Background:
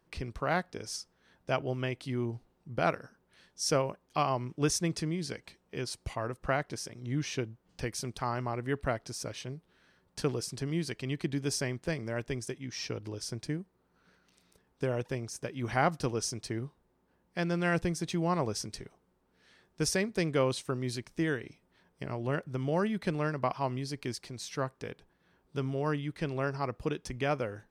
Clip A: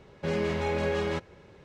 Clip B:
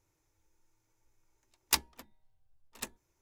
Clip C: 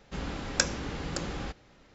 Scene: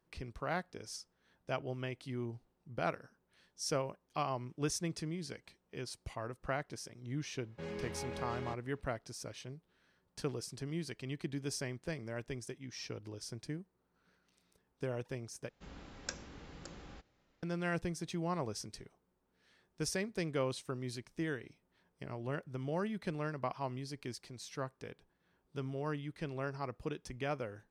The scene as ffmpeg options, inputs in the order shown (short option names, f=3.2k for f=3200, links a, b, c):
-filter_complex "[0:a]volume=-7dB[a];[1:a]bandreject=f=610:w=12[b];[a]asplit=2[c][d];[c]atrim=end=15.494[e];[3:a]atrim=end=1.94,asetpts=PTS-STARTPTS,volume=-16dB[f];[d]atrim=start=17.426[g];[b]atrim=end=1.64,asetpts=PTS-STARTPTS,volume=-14dB,afade=t=in:d=0.004:c=hsin,afade=t=out:st=1.636:d=0.004:c=hsin,adelay=7350[h];[e][f]acrossfade=d=0.004:c1=hsin:c2=hsin[i];[i][g]acrossfade=d=0.004:c1=hsin:c2=hsin[j];[j][h]amix=inputs=2:normalize=0"